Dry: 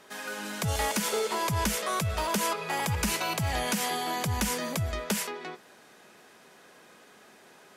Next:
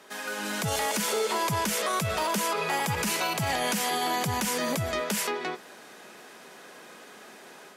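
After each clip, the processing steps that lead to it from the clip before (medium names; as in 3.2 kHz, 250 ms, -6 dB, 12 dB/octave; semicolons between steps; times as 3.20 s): high-pass 170 Hz 12 dB/octave; level rider gain up to 5 dB; peak limiter -21 dBFS, peak gain reduction 9.5 dB; trim +2 dB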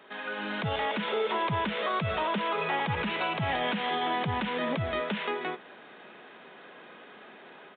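resampled via 8 kHz; trim -1 dB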